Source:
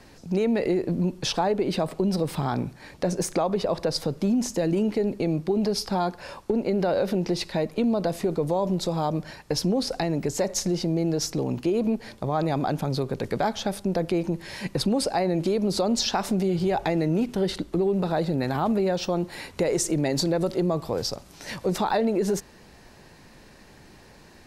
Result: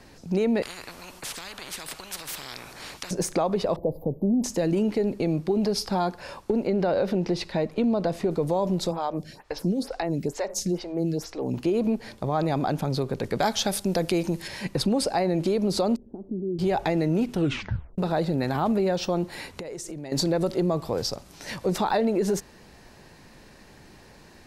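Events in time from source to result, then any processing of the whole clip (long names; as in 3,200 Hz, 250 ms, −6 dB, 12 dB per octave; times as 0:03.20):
0:00.62–0:03.11: every bin compressed towards the loudest bin 10 to 1
0:03.76–0:04.44: inverse Chebyshev band-stop filter 1,400–9,300 Hz
0:06.67–0:08.31: high-shelf EQ 7,200 Hz −11 dB
0:08.91–0:11.54: phaser with staggered stages 2.2 Hz
0:13.40–0:14.48: high-shelf EQ 2,900 Hz +11 dB
0:15.96–0:16.59: transistor ladder low-pass 390 Hz, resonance 55%
0:17.33: tape stop 0.65 s
0:19.56–0:20.12: downward compressor 8 to 1, threshold −33 dBFS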